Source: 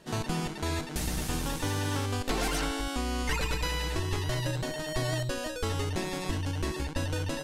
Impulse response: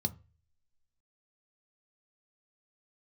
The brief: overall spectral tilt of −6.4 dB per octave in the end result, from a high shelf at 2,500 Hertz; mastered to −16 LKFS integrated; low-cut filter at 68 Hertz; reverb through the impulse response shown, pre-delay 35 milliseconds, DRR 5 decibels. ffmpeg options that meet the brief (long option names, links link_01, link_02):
-filter_complex "[0:a]highpass=68,highshelf=frequency=2500:gain=-7.5,asplit=2[link_01][link_02];[1:a]atrim=start_sample=2205,adelay=35[link_03];[link_02][link_03]afir=irnorm=-1:irlink=0,volume=-7dB[link_04];[link_01][link_04]amix=inputs=2:normalize=0,volume=12.5dB"